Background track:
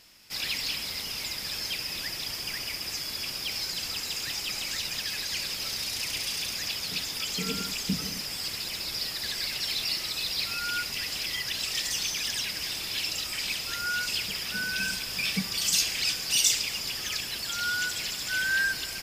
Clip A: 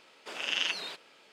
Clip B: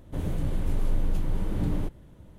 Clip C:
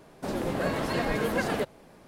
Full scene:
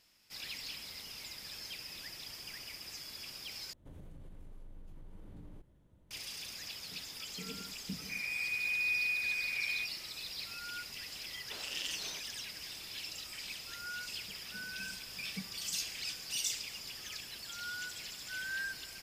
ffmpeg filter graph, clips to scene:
-filter_complex "[2:a]asplit=2[a][b];[0:a]volume=-12.5dB[c];[a]acompressor=threshold=-31dB:ratio=6:attack=3.2:release=140:knee=1:detection=peak[d];[b]lowpass=f=2.1k:t=q:w=0.5098,lowpass=f=2.1k:t=q:w=0.6013,lowpass=f=2.1k:t=q:w=0.9,lowpass=f=2.1k:t=q:w=2.563,afreqshift=-2500[e];[1:a]acrossover=split=430|3000[f][g][h];[g]acompressor=threshold=-42dB:ratio=6:attack=3.2:release=140:knee=2.83:detection=peak[i];[f][i][h]amix=inputs=3:normalize=0[j];[c]asplit=2[k][l];[k]atrim=end=3.734[m];[d]atrim=end=2.38,asetpts=PTS-STARTPTS,volume=-15.5dB[n];[l]atrim=start=6.106[o];[e]atrim=end=2.38,asetpts=PTS-STARTPTS,volume=-11.5dB,afade=t=in:d=0.004:c=hsin,afade=t=out:st=2.376:d=0.004:c=hsin,adelay=7960[p];[j]atrim=end=1.32,asetpts=PTS-STARTPTS,volume=-6dB,afade=t=in:d=0.004:c=hsin,afade=t=out:st=1.316:d=0.004:c=hsin,adelay=11240[q];[m][n]acrossfade=d=0.004:c1=hsin:c2=hsin[r];[r][o]acrossfade=d=0.004:c1=hsin:c2=hsin[s];[s][p][q]amix=inputs=3:normalize=0"

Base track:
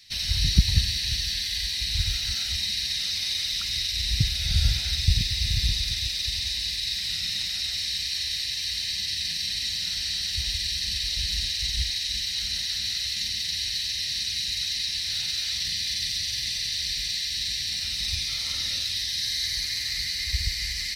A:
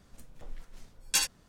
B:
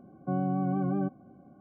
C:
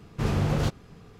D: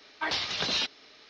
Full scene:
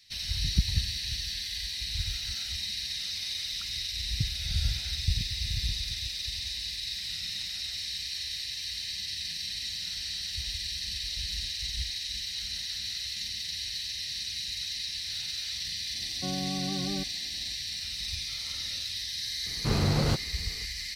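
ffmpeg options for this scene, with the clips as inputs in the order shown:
-filter_complex "[0:a]volume=-6.5dB[a];[2:a]atrim=end=1.6,asetpts=PTS-STARTPTS,volume=-5dB,afade=t=in:d=0.004:c=hsin,afade=t=out:st=1.596:d=0.004:c=hsin,adelay=15950[b];[3:a]atrim=end=1.19,asetpts=PTS-STARTPTS,volume=-1dB,afade=t=in:d=0.004:c=hsin,afade=t=out:st=1.186:d=0.004:c=hsin,adelay=19460[c];[a][b][c]amix=inputs=3:normalize=0"

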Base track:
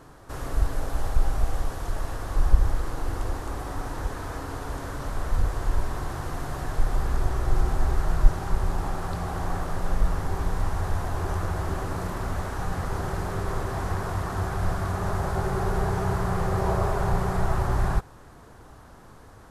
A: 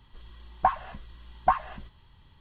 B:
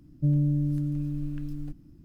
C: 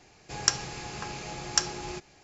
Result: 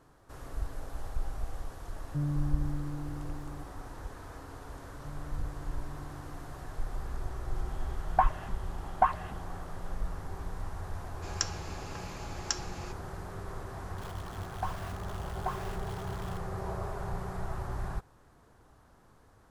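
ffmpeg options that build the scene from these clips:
-filter_complex "[2:a]asplit=2[a][b];[1:a]asplit=2[c][d];[0:a]volume=-12dB[e];[b]acompressor=threshold=-28dB:ratio=6:attack=3.2:release=140:knee=1:detection=peak[f];[c]lowpass=3.8k[g];[d]aeval=exprs='val(0)+0.5*0.0422*sgn(val(0))':c=same[h];[a]atrim=end=2.04,asetpts=PTS-STARTPTS,volume=-8.5dB,afade=t=in:d=0.004:c=hsin,afade=t=out:st=2.036:d=0.004:c=hsin,adelay=1920[i];[f]atrim=end=2.04,asetpts=PTS-STARTPTS,volume=-16dB,afade=t=in:d=0.004:c=hsin,afade=t=out:st=2.036:d=0.004:c=hsin,adelay=4820[j];[g]atrim=end=2.4,asetpts=PTS-STARTPTS,volume=-2dB,afade=t=in:d=0.004:c=hsin,afade=t=out:st=2.396:d=0.004:c=hsin,adelay=332514S[k];[3:a]atrim=end=2.23,asetpts=PTS-STARTPTS,volume=-8dB,afade=t=in:d=0.004:c=hsin,afade=t=out:st=2.226:d=0.004:c=hsin,adelay=10930[l];[h]atrim=end=2.4,asetpts=PTS-STARTPTS,volume=-14.5dB,afade=t=in:d=0.004:c=hsin,afade=t=out:st=2.396:d=0.004:c=hsin,adelay=13980[m];[e][i][j][k][l][m]amix=inputs=6:normalize=0"

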